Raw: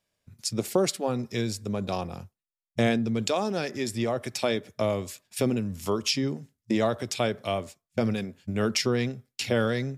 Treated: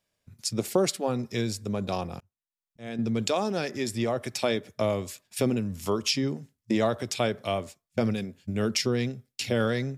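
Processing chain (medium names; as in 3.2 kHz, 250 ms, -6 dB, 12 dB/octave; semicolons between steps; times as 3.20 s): 2.20–2.99 s: slow attack 549 ms; 8.11–9.60 s: peaking EQ 1.1 kHz -4.5 dB 1.9 oct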